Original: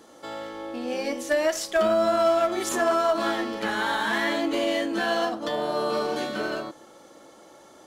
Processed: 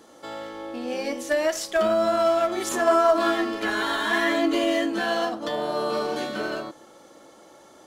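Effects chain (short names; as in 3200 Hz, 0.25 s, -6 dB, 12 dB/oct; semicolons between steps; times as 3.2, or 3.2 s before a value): 2.87–4.9 comb 2.9 ms, depth 72%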